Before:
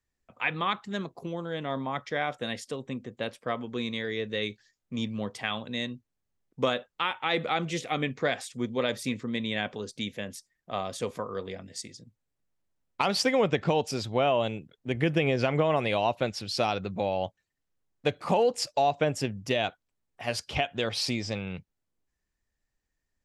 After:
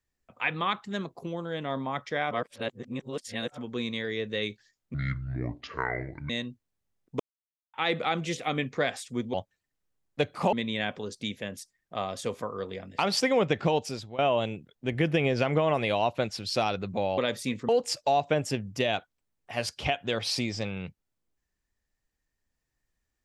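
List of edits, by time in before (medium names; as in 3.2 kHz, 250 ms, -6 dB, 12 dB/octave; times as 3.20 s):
2.31–3.58 s: reverse
4.94–5.74 s: speed 59%
6.64–7.18 s: mute
8.78–9.29 s: swap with 17.20–18.39 s
11.75–13.01 s: delete
13.79–14.21 s: fade out, to -18 dB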